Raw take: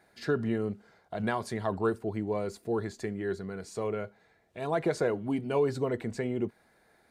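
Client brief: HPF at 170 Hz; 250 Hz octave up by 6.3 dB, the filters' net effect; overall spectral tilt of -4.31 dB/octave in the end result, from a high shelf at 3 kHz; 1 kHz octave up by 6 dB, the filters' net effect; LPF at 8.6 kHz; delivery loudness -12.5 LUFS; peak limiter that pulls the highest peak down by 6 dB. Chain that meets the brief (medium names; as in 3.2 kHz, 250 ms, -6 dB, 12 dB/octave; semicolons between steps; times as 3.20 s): high-pass 170 Hz; low-pass 8.6 kHz; peaking EQ 250 Hz +8.5 dB; peaking EQ 1 kHz +8 dB; treble shelf 3 kHz -7 dB; trim +17 dB; peak limiter -0.5 dBFS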